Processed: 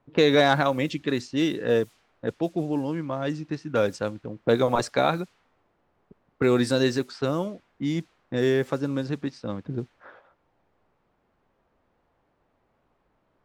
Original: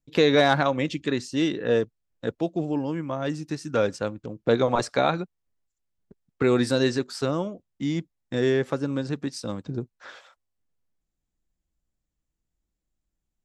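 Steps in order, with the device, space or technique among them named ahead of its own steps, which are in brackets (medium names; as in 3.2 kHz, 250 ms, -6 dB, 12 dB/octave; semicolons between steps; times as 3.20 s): cassette deck with a dynamic noise filter (white noise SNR 30 dB; level-controlled noise filter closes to 830 Hz, open at -20.5 dBFS)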